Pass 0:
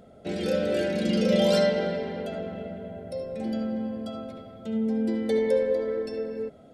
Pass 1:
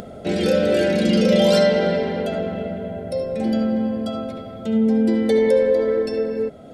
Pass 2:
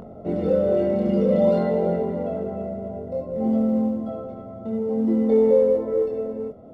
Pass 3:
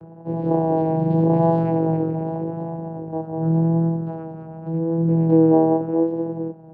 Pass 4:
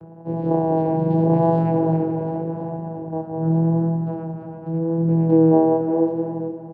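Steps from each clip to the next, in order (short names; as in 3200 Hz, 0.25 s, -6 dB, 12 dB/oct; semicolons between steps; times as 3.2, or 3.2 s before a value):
in parallel at +2 dB: limiter -20 dBFS, peak gain reduction 8.5 dB; on the sum: upward compressor, threshold -32 dBFS; gain +2 dB
chorus 0.55 Hz, depth 3.3 ms; modulation noise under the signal 20 dB; polynomial smoothing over 65 samples
AGC gain up to 3 dB; vocoder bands 8, saw 163 Hz; vibrato 0.85 Hz 27 cents
feedback echo 0.344 s, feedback 34%, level -11 dB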